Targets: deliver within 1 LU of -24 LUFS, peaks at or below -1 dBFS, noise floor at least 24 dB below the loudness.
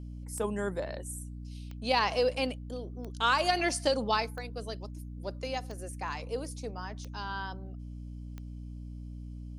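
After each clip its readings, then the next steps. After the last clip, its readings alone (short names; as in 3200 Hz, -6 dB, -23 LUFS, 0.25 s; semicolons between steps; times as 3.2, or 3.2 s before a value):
clicks 7; hum 60 Hz; harmonics up to 300 Hz; hum level -39 dBFS; loudness -33.0 LUFS; peak -12.5 dBFS; loudness target -24.0 LUFS
-> de-click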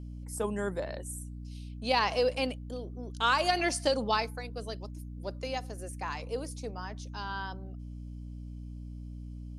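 clicks 0; hum 60 Hz; harmonics up to 300 Hz; hum level -39 dBFS
-> notches 60/120/180/240/300 Hz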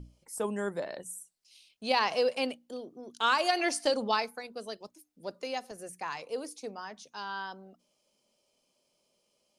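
hum none; loudness -32.5 LUFS; peak -12.5 dBFS; loudness target -24.0 LUFS
-> gain +8.5 dB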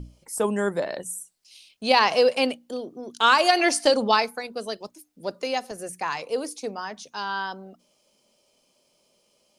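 loudness -24.0 LUFS; peak -4.0 dBFS; noise floor -67 dBFS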